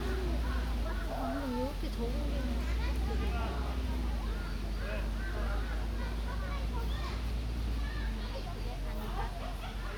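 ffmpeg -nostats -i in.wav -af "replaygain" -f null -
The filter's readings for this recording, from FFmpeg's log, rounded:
track_gain = +21.9 dB
track_peak = 0.049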